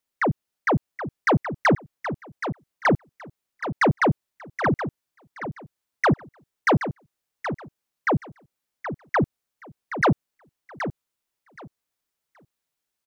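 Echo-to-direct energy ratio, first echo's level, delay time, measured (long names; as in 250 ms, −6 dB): −10.0 dB, −10.0 dB, 774 ms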